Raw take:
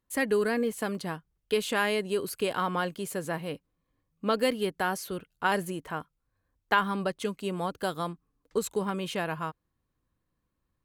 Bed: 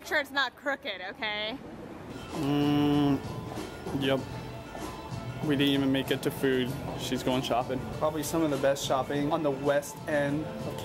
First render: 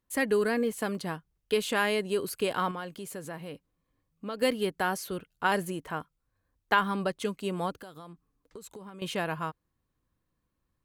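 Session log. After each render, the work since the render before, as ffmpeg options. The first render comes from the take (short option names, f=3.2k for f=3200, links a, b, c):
-filter_complex "[0:a]asettb=1/sr,asplit=3[a][b][c];[a]atrim=end=2.714[d];[b]atrim=start=2.71:end=4.42,asetpts=PTS-STARTPTS,afade=t=in:d=0.004:c=qsin,afade=t=out:st=1.706:d=0.004:c=qsin,acompressor=threshold=-40dB:ratio=2:attack=3.2:release=140:knee=1:detection=peak[e];[c]atrim=start=4.416[f];[d][e]acrossfade=d=0.004:c1=hsin:c2=qsin[g];[g][f]acrossfade=d=0.004:c1=qsin:c2=hsin,asettb=1/sr,asplit=3[h][i][j];[h]atrim=end=7.744[k];[i]atrim=start=7.74:end=9.02,asetpts=PTS-STARTPTS,afade=t=in:d=0.004:c=qsin,afade=t=out:st=1.276:d=0.004:c=qsin,acompressor=threshold=-42dB:ratio=8:attack=3.2:release=140:knee=1:detection=peak[l];[j]atrim=start=9.016[m];[k][l]acrossfade=d=0.004:c1=hsin:c2=qsin[n];[n][m]acrossfade=d=0.004:c1=qsin:c2=hsin"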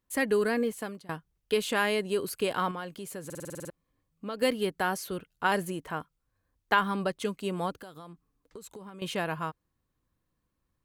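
-filter_complex "[0:a]asplit=11[a][b][c][d][e][f][g][h][i][j][k];[a]atrim=end=1.09,asetpts=PTS-STARTPTS,afade=t=out:st=0.63:d=0.46:silence=0.0668344[l];[b]atrim=start=1.09:end=3.302,asetpts=PTS-STARTPTS,afade=t=in:d=0.004:c=hsin:silence=0.0668344[m];[c]atrim=start=3.248:end=3.302[n];[d]atrim=start=3.248:end=3.302[o];[e]atrim=start=3.248:end=3.302[p];[f]atrim=start=3.248:end=3.302[q];[g]atrim=start=3.248:end=3.302[r];[h]atrim=start=3.248:end=3.302[s];[i]atrim=start=3.248:end=3.302[t];[j]atrim=start=3.248:end=3.302[u];[k]atrim=start=3.698[v];[l][m]concat=n=2:v=0:a=1[w];[w][n]acrossfade=d=0.004:c1=hsin:c2=hsin[x];[x][o]acrossfade=d=0.004:c1=hsin:c2=hsin[y];[y][p]acrossfade=d=0.004:c1=hsin:c2=hsin[z];[z][q]acrossfade=d=0.004:c1=hsin:c2=hsin[aa];[aa][r]acrossfade=d=0.004:c1=hsin:c2=hsin[ab];[ab][s]acrossfade=d=0.004:c1=hsin:c2=hsin[ac];[ac][t]acrossfade=d=0.004:c1=hsin:c2=hsin[ad];[ad][u]acrossfade=d=0.004:c1=hsin:c2=hsin[ae];[ae][v]acrossfade=d=0.004:c1=hsin:c2=hsin"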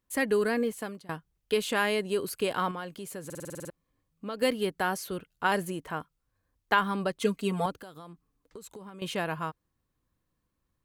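-filter_complex "[0:a]asettb=1/sr,asplit=3[a][b][c];[a]atrim=end=7.204[d];[b]atrim=start=7.2:end=7.66,asetpts=PTS-STARTPTS,afade=t=in:d=0.004:c=qsin,afade=t=out:st=0.456:d=0.004:c=qsin,aecho=1:1:4.4:0.93,atrim=end_sample=20286[e];[c]atrim=start=7.656[f];[d][e]acrossfade=d=0.004:c1=hsin:c2=qsin[g];[g][f]acrossfade=d=0.004:c1=qsin:c2=hsin"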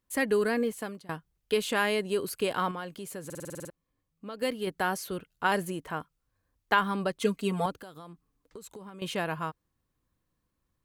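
-filter_complex "[0:a]asplit=3[a][b][c];[a]atrim=end=3.672[d];[b]atrim=start=3.668:end=4.672,asetpts=PTS-STARTPTS,volume=-4dB[e];[c]atrim=start=4.668[f];[d][e]acrossfade=d=0.004:c1=hsin:c2=hsin[g];[g][f]acrossfade=d=0.004:c1=hsin:c2=hsin"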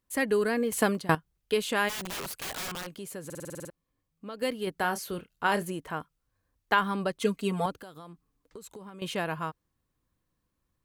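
-filter_complex "[0:a]asplit=3[a][b][c];[a]afade=t=out:st=1.88:d=0.02[d];[b]aeval=exprs='(mod(35.5*val(0)+1,2)-1)/35.5':c=same,afade=t=in:st=1.88:d=0.02,afade=t=out:st=2.93:d=0.02[e];[c]afade=t=in:st=2.93:d=0.02[f];[d][e][f]amix=inputs=3:normalize=0,asettb=1/sr,asplit=3[g][h][i];[g]atrim=end=4.784[j];[h]atrim=start=4.78:end=5.63,asetpts=PTS-STARTPTS,afade=t=in:d=0.004:c=qsin,afade=t=out:st=0.846:d=0.004:c=qsin,asplit=2[k][l];[l]adelay=29,volume=-11.5dB[m];[k][m]amix=inputs=2:normalize=0,atrim=end_sample=37485[n];[i]atrim=start=5.626[o];[j][n]acrossfade=d=0.004:c1=hsin:c2=qsin[p];[p][o]acrossfade=d=0.004:c1=qsin:c2=hsin,asplit=3[q][r][s];[q]atrim=end=0.722[t];[r]atrim=start=0.718:end=1.152,asetpts=PTS-STARTPTS,volume=12dB[u];[s]atrim=start=1.148[v];[t][u]acrossfade=d=0.004:c1=hsin:c2=hsin[w];[w][v]acrossfade=d=0.004:c1=hsin:c2=hsin"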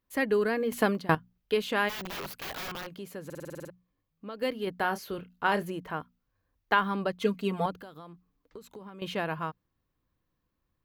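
-af "equalizer=f=8.7k:t=o:w=0.93:g=-13,bandreject=f=60:t=h:w=6,bandreject=f=120:t=h:w=6,bandreject=f=180:t=h:w=6,bandreject=f=240:t=h:w=6"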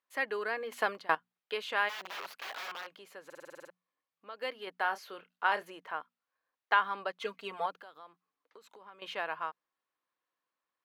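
-af "highpass=760,aemphasis=mode=reproduction:type=50kf"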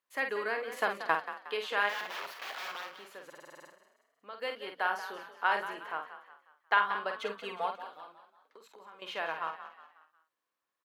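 -filter_complex "[0:a]asplit=2[a][b];[b]adelay=49,volume=-6.5dB[c];[a][c]amix=inputs=2:normalize=0,asplit=2[d][e];[e]asplit=4[f][g][h][i];[f]adelay=181,afreqshift=41,volume=-12dB[j];[g]adelay=362,afreqshift=82,volume=-19.3dB[k];[h]adelay=543,afreqshift=123,volume=-26.7dB[l];[i]adelay=724,afreqshift=164,volume=-34dB[m];[j][k][l][m]amix=inputs=4:normalize=0[n];[d][n]amix=inputs=2:normalize=0"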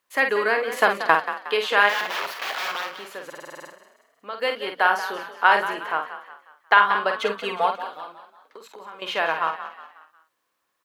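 -af "volume=12dB,alimiter=limit=-2dB:level=0:latency=1"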